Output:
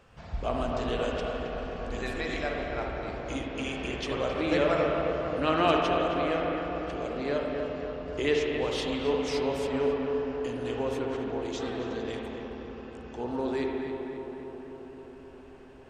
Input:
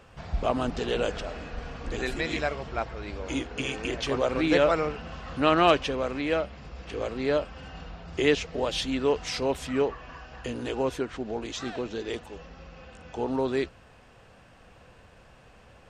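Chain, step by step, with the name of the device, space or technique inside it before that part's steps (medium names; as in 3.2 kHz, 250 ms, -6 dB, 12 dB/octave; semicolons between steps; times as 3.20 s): dub delay into a spring reverb (filtered feedback delay 267 ms, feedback 77%, low-pass 2 kHz, level -6 dB; spring tank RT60 2.2 s, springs 49/58 ms, chirp 40 ms, DRR 1 dB); trim -5.5 dB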